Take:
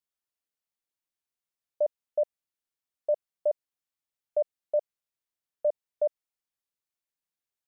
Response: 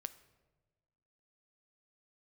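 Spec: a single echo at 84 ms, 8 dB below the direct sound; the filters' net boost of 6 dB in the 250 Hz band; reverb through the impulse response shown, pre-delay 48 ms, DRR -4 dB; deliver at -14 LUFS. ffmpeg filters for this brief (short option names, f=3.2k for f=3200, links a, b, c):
-filter_complex "[0:a]equalizer=f=250:t=o:g=8,aecho=1:1:84:0.398,asplit=2[a][b];[1:a]atrim=start_sample=2205,adelay=48[c];[b][c]afir=irnorm=-1:irlink=0,volume=7dB[d];[a][d]amix=inputs=2:normalize=0,volume=13dB"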